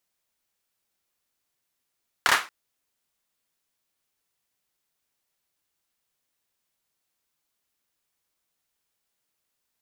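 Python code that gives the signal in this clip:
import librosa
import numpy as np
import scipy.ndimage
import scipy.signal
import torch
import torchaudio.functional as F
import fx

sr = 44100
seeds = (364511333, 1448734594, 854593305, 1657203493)

y = fx.drum_clap(sr, seeds[0], length_s=0.23, bursts=3, spacing_ms=28, hz=1400.0, decay_s=0.29)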